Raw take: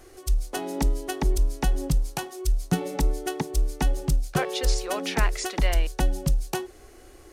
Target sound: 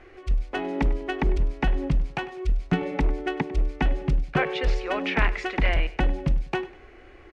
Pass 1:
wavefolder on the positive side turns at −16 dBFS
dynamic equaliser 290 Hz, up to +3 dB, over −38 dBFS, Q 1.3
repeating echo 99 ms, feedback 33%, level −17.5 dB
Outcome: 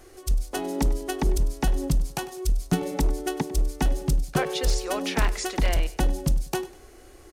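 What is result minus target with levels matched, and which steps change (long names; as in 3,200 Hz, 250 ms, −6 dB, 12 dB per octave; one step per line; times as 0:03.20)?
2,000 Hz band −5.0 dB
add after dynamic equaliser: low-pass with resonance 2,300 Hz, resonance Q 2.3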